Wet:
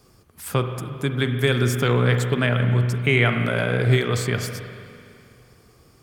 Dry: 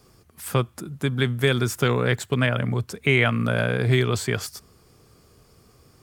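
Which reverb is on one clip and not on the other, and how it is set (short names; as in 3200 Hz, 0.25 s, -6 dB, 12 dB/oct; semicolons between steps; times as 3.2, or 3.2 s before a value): spring tank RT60 2.5 s, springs 41/49 ms, chirp 60 ms, DRR 6 dB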